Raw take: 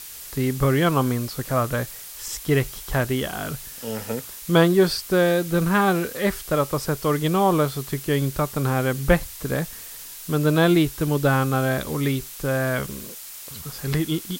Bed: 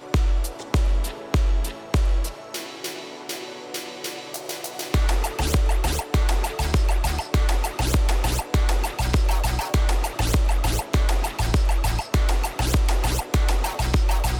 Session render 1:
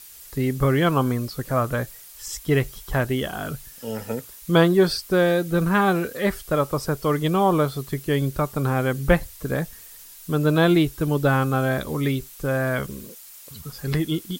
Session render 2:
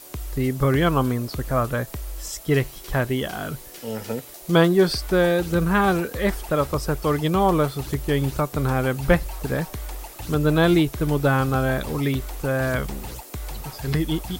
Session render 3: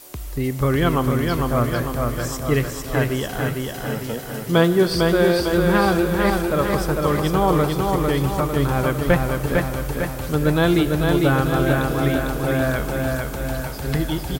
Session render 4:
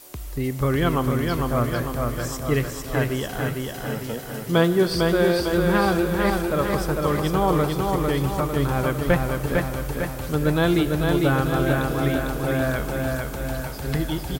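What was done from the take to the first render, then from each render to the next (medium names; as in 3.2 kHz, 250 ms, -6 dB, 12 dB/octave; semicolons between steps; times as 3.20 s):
noise reduction 8 dB, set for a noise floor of -39 dBFS
add bed -13 dB
feedback delay 451 ms, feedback 55%, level -3.5 dB; Schroeder reverb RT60 3.9 s, combs from 26 ms, DRR 11.5 dB
trim -2.5 dB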